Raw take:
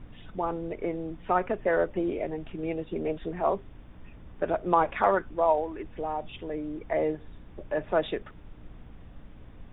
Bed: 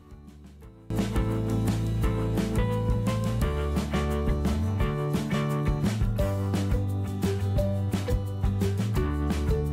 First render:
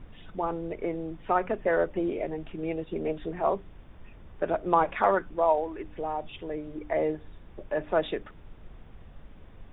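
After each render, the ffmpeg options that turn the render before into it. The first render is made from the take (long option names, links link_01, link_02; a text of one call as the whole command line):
ffmpeg -i in.wav -af "bandreject=frequency=60:width_type=h:width=4,bandreject=frequency=120:width_type=h:width=4,bandreject=frequency=180:width_type=h:width=4,bandreject=frequency=240:width_type=h:width=4,bandreject=frequency=300:width_type=h:width=4" out.wav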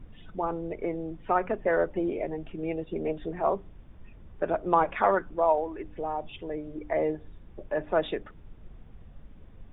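ffmpeg -i in.wav -af "afftdn=noise_reduction=6:noise_floor=-50" out.wav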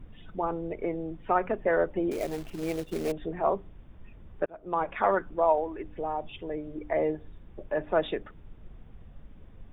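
ffmpeg -i in.wav -filter_complex "[0:a]asettb=1/sr,asplit=3[link_01][link_02][link_03];[link_01]atrim=end=2.114[link_04];[link_02]atrim=start=2.11:end=3.12,asetpts=PTS-STARTPTS,afade=type=in:duration=0.004:curve=qsin,afade=type=out:start_time=1.006:duration=0.004:curve=qsin,acrusher=bits=3:mode=log:mix=0:aa=0.000001[link_05];[link_03]atrim=start=3.116[link_06];[link_04][link_05]acrossfade=duration=0.004:curve1=hsin:curve2=qsin[link_07];[link_07][link_06]acrossfade=duration=0.004:curve1=qsin:curve2=hsin,asplit=2[link_08][link_09];[link_08]atrim=end=4.46,asetpts=PTS-STARTPTS,afade=type=out:start_time=4.456:duration=0.004:curve=hsin[link_10];[link_09]atrim=start=4.46,asetpts=PTS-STARTPTS,afade=type=in:duration=0.95:curve=qsin[link_11];[link_10][link_11]concat=n=2:v=0:a=1" out.wav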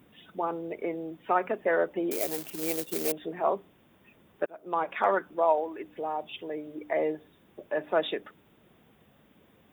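ffmpeg -i in.wav -af "highpass=220,aemphasis=mode=production:type=75fm" out.wav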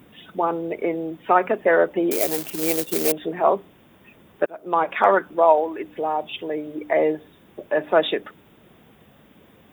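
ffmpeg -i in.wav -af "volume=8.5dB" out.wav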